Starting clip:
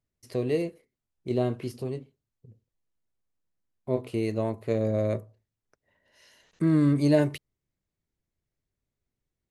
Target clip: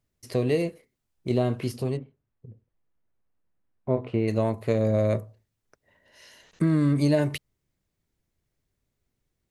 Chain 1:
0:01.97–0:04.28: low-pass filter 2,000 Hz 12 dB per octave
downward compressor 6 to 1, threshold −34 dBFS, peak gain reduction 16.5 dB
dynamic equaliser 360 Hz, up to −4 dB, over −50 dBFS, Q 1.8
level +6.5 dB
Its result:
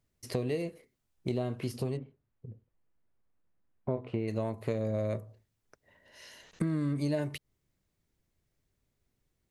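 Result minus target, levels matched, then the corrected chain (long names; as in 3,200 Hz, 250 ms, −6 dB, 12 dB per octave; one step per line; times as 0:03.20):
downward compressor: peak gain reduction +9 dB
0:01.97–0:04.28: low-pass filter 2,000 Hz 12 dB per octave
downward compressor 6 to 1, threshold −23 dBFS, peak gain reduction 7.5 dB
dynamic equaliser 360 Hz, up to −4 dB, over −50 dBFS, Q 1.8
level +6.5 dB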